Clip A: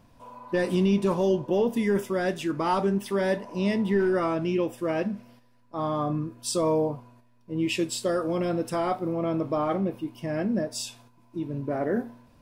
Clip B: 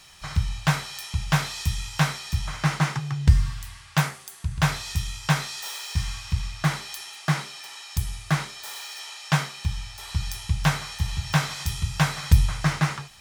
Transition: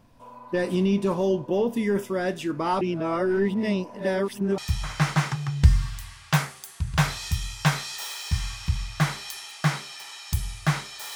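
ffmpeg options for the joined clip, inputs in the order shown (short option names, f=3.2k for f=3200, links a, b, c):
-filter_complex "[0:a]apad=whole_dur=11.15,atrim=end=11.15,asplit=2[a][b];[a]atrim=end=2.812[c];[b]atrim=start=2.808:end=4.582,asetpts=PTS-STARTPTS,areverse[d];[1:a]atrim=start=2.218:end=8.79[e];[c][d]acrossfade=d=0.004:c1=hsin:c2=hsin[f];[f][e]acrossfade=d=0.004:c1=hsin:c2=hsin"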